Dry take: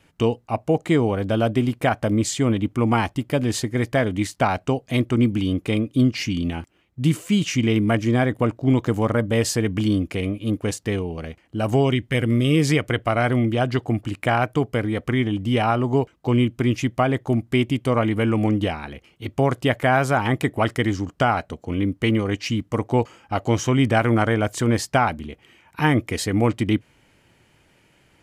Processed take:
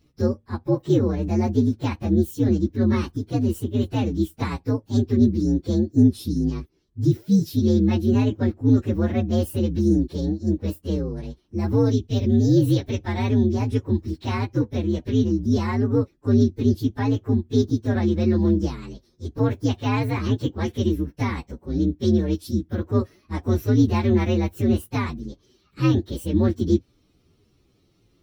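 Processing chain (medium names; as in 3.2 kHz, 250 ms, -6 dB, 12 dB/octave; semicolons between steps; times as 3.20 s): frequency axis rescaled in octaves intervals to 125%; resonant low shelf 500 Hz +7.5 dB, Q 1.5; trim -6 dB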